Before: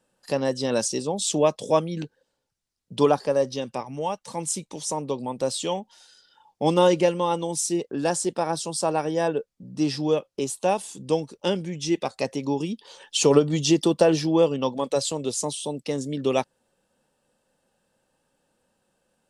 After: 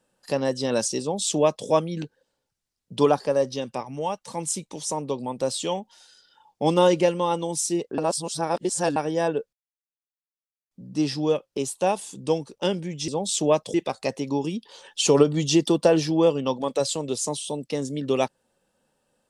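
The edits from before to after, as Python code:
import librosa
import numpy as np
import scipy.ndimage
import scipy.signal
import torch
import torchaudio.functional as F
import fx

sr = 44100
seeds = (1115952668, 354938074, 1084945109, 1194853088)

y = fx.edit(x, sr, fx.duplicate(start_s=1.01, length_s=0.66, to_s=11.9),
    fx.reverse_span(start_s=7.98, length_s=0.98),
    fx.insert_silence(at_s=9.53, length_s=1.18), tone=tone)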